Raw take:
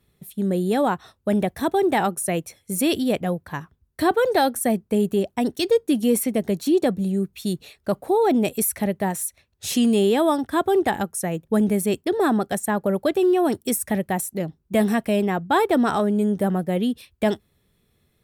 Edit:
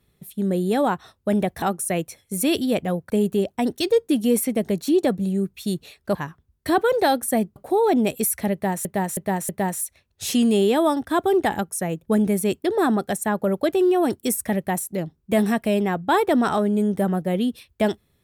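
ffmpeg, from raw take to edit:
-filter_complex "[0:a]asplit=8[s0][s1][s2][s3][s4][s5][s6][s7];[s0]atrim=end=1.622[s8];[s1]atrim=start=1.998:end=3.482[s9];[s2]atrim=start=4.888:end=7.942[s10];[s3]atrim=start=3.478:end=4.892[s11];[s4]atrim=start=7.938:end=9.232[s12];[s5]atrim=start=8.908:end=9.232[s13];[s6]atrim=start=8.908:end=9.232[s14];[s7]atrim=start=8.908[s15];[s8][s9]acrossfade=d=0.004:c1=hsin:c2=hsin[s16];[s16][s10]acrossfade=d=0.004:c1=hsin:c2=hsin[s17];[s17][s11]acrossfade=d=0.004:c1=hsin:c2=hsin[s18];[s18][s12]acrossfade=d=0.004:c1=hsin:c2=hsin[s19];[s19][s13]acrossfade=d=0.004:c1=hsin:c2=hsin[s20];[s20][s14]acrossfade=d=0.004:c1=hsin:c2=hsin[s21];[s21][s15]acrossfade=d=0.004:c1=hsin:c2=hsin"

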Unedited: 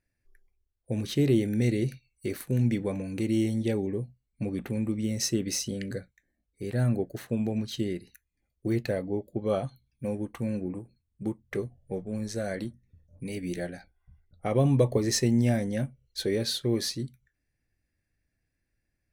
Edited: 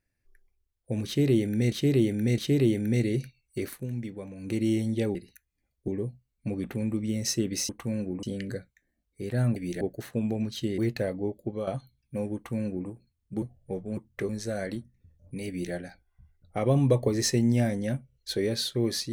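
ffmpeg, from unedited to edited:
-filter_complex "[0:a]asplit=16[s0][s1][s2][s3][s4][s5][s6][s7][s8][s9][s10][s11][s12][s13][s14][s15];[s0]atrim=end=1.722[s16];[s1]atrim=start=1.058:end=1.722[s17];[s2]atrim=start=1.058:end=2.55,asetpts=PTS-STARTPTS,afade=t=out:st=1.312:d=0.18:silence=0.354813[s18];[s3]atrim=start=2.55:end=3.03,asetpts=PTS-STARTPTS,volume=0.355[s19];[s4]atrim=start=3.03:end=3.832,asetpts=PTS-STARTPTS,afade=t=in:d=0.18:silence=0.354813[s20];[s5]atrim=start=7.938:end=8.672[s21];[s6]atrim=start=3.828:end=5.642[s22];[s7]atrim=start=10.238:end=10.782[s23];[s8]atrim=start=5.638:end=6.972[s24];[s9]atrim=start=13.368:end=13.622[s25];[s10]atrim=start=6.968:end=7.942[s26];[s11]atrim=start=8.668:end=9.56,asetpts=PTS-STARTPTS,afade=t=out:st=0.612:d=0.28:c=qsin:silence=0.281838[s27];[s12]atrim=start=9.56:end=11.312,asetpts=PTS-STARTPTS,afade=t=in:d=0.004:c=hsin:silence=0.281838[s28];[s13]atrim=start=11.628:end=12.182[s29];[s14]atrim=start=11.308:end=11.632[s30];[s15]atrim=start=12.178[s31];[s16][s17]acrossfade=d=0.004:c1=hsin:c2=hsin[s32];[s18][s19][s20]concat=n=3:v=0:a=1[s33];[s32][s33]acrossfade=d=0.004:c1=hsin:c2=hsin[s34];[s34][s21]acrossfade=d=0.004:c1=hsin:c2=hsin[s35];[s35][s22]acrossfade=d=0.004:c1=hsin:c2=hsin[s36];[s36][s23]acrossfade=d=0.004:c1=hsin:c2=hsin[s37];[s37][s24]acrossfade=d=0.004:c1=hsin:c2=hsin[s38];[s38][s25]acrossfade=d=0.004:c1=hsin:c2=hsin[s39];[s39][s26]acrossfade=d=0.004:c1=hsin:c2=hsin[s40];[s27][s28]concat=n=2:v=0:a=1[s41];[s40][s41]acrossfade=d=0.004:c1=hsin:c2=hsin[s42];[s42][s29]acrossfade=d=0.004:c1=hsin:c2=hsin[s43];[s43][s30]acrossfade=d=0.004:c1=hsin:c2=hsin[s44];[s44][s31]acrossfade=d=0.004:c1=hsin:c2=hsin"

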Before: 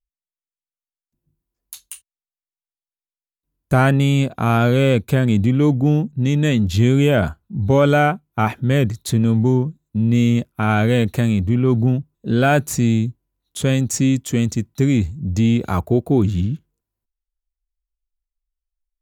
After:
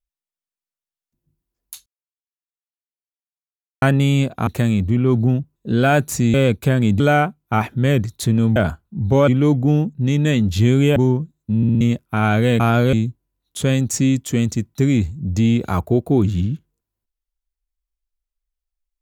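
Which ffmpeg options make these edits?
-filter_complex "[0:a]asplit=15[s0][s1][s2][s3][s4][s5][s6][s7][s8][s9][s10][s11][s12][s13][s14];[s0]atrim=end=1.86,asetpts=PTS-STARTPTS,afade=t=out:st=1.856:d=0.004:c=hsin[s15];[s1]atrim=start=1.86:end=3.82,asetpts=PTS-STARTPTS,volume=0[s16];[s2]atrim=start=3.82:end=4.472,asetpts=PTS-STARTPTS,afade=t=in:d=0.004:c=hsin[s17];[s3]atrim=start=11.058:end=12.932[s18];[s4]atrim=start=4.798:end=5.462[s19];[s5]atrim=start=7.858:end=9.422[s20];[s6]atrim=start=7.138:end=7.862[s21];[s7]atrim=start=5.458:end=7.142[s22];[s8]atrim=start=9.418:end=10.092[s23];[s9]atrim=start=10.028:end=10.092[s24];[s10]atrim=start=10.028:end=10.092[s25];[s11]atrim=start=10.028:end=10.092[s26];[s12]atrim=start=10.268:end=11.062[s27];[s13]atrim=start=4.468:end=4.802[s28];[s14]atrim=start=12.928[s29];[s15][s16][s17]concat=n=3:v=0:a=1[s30];[s30][s18]acrossfade=d=0.004:c1=hsin:c2=hsin[s31];[s31][s19]acrossfade=d=0.004:c1=hsin:c2=hsin[s32];[s32][s20]acrossfade=d=0.004:c1=hsin:c2=hsin[s33];[s33][s21]acrossfade=d=0.004:c1=hsin:c2=hsin[s34];[s34][s22]acrossfade=d=0.004:c1=hsin:c2=hsin[s35];[s35][s23]acrossfade=d=0.004:c1=hsin:c2=hsin[s36];[s36][s24]acrossfade=d=0.004:c1=hsin:c2=hsin[s37];[s37][s25]acrossfade=d=0.004:c1=hsin:c2=hsin[s38];[s38][s26]acrossfade=d=0.004:c1=hsin:c2=hsin[s39];[s39][s27]acrossfade=d=0.004:c1=hsin:c2=hsin[s40];[s40][s28]acrossfade=d=0.004:c1=hsin:c2=hsin[s41];[s41][s29]acrossfade=d=0.004:c1=hsin:c2=hsin"

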